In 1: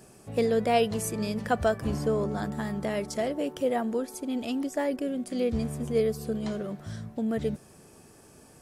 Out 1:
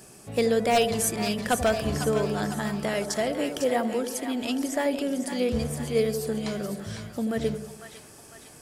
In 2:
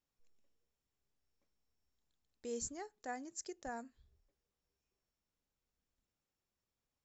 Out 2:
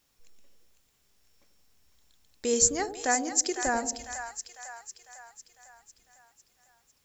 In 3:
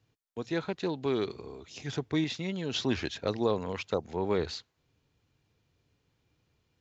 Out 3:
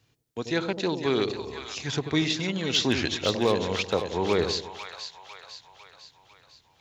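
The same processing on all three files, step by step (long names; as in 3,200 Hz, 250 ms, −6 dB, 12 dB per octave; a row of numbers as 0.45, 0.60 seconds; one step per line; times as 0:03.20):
tilt shelving filter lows −3.5 dB, about 1,500 Hz
wave folding −18.5 dBFS
on a send: echo with a time of its own for lows and highs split 730 Hz, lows 87 ms, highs 501 ms, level −8 dB
on the sum: loudness normalisation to −27 LKFS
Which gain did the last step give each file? +4.0, +18.0, +7.0 decibels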